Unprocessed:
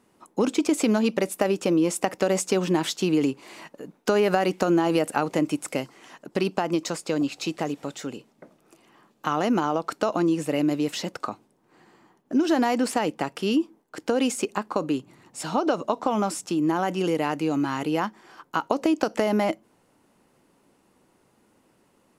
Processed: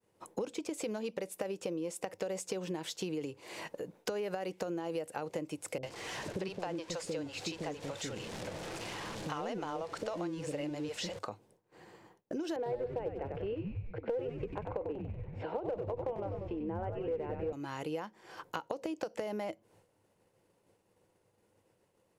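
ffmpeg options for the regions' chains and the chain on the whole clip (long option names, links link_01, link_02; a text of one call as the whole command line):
ffmpeg -i in.wav -filter_complex "[0:a]asettb=1/sr,asplit=3[link_01][link_02][link_03];[link_01]atrim=end=5.784[link_04];[link_02]atrim=start=5.78:end=11.19,asetpts=PTS-STARTPTS,afade=type=in:duration=0.004:curve=qsin,afade=type=out:start_time=5.406:duration=0.004:curve=qsin,aeval=exprs='val(0)+0.5*0.02*sgn(val(0))':channel_layout=same,lowpass=7700,acrossover=split=450[link_05][link_06];[link_06]adelay=50[link_07];[link_05][link_07]amix=inputs=2:normalize=0,atrim=end_sample=238581[link_08];[link_03]atrim=start=11.186[link_09];[link_04][link_08]acrossfade=duration=0.004:curve1=hsin:curve2=qsin[link_10];[link_10][link_09]acrossfade=duration=0.004:curve1=qsin:curve2=hsin,asettb=1/sr,asplit=3[link_11][link_12][link_13];[link_11]atrim=end=12.564[link_14];[link_12]atrim=start=12.56:end=17.53,asetpts=PTS-STARTPTS,afade=type=in:duration=0.004:curve=qsin,afade=type=out:start_time=4.966:duration=0.004:curve=qsin,highpass=290,equalizer=frequency=470:width_type=q:width=4:gain=7,equalizer=frequency=1200:width_type=q:width=4:gain=-7,equalizer=frequency=1800:width_type=q:width=4:gain=-6,lowpass=frequency=2200:width=0.5412,lowpass=frequency=2200:width=1.3066,aeval=exprs='clip(val(0),-1,0.133)':channel_layout=same,asplit=9[link_15][link_16][link_17][link_18][link_19][link_20][link_21][link_22][link_23];[link_16]adelay=95,afreqshift=-110,volume=-5dB[link_24];[link_17]adelay=190,afreqshift=-220,volume=-9.4dB[link_25];[link_18]adelay=285,afreqshift=-330,volume=-13.9dB[link_26];[link_19]adelay=380,afreqshift=-440,volume=-18.3dB[link_27];[link_20]adelay=475,afreqshift=-550,volume=-22.7dB[link_28];[link_21]adelay=570,afreqshift=-660,volume=-27.2dB[link_29];[link_22]adelay=665,afreqshift=-770,volume=-31.6dB[link_30];[link_23]adelay=760,afreqshift=-880,volume=-36.1dB[link_31];[link_15][link_24][link_25][link_26][link_27][link_28][link_29][link_30][link_31]amix=inputs=9:normalize=0,atrim=end_sample=219177[link_32];[link_13]atrim=start=17.526[link_33];[link_14][link_32]acrossfade=duration=0.004:curve1=hsin:curve2=qsin[link_34];[link_34][link_33]acrossfade=duration=0.004:curve1=qsin:curve2=hsin,agate=range=-33dB:threshold=-54dB:ratio=3:detection=peak,equalizer=frequency=100:width_type=o:width=0.33:gain=12,equalizer=frequency=250:width_type=o:width=0.33:gain=-10,equalizer=frequency=500:width_type=o:width=0.33:gain=8,equalizer=frequency=1250:width_type=o:width=0.33:gain=-5,acompressor=threshold=-39dB:ratio=4,volume=1dB" out.wav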